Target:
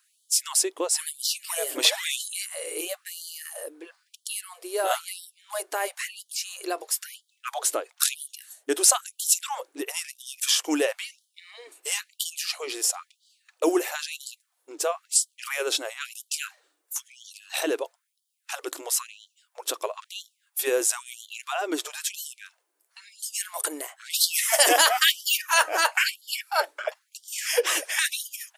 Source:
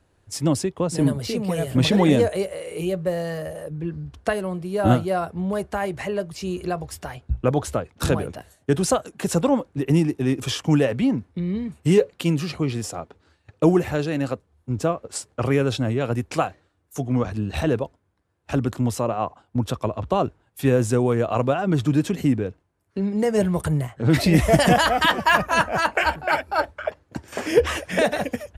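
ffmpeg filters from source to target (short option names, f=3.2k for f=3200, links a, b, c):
-af "crystalizer=i=4.5:c=0,afftfilt=real='re*gte(b*sr/1024,270*pow(3000/270,0.5+0.5*sin(2*PI*1*pts/sr)))':imag='im*gte(b*sr/1024,270*pow(3000/270,0.5+0.5*sin(2*PI*1*pts/sr)))':win_size=1024:overlap=0.75,volume=-4dB"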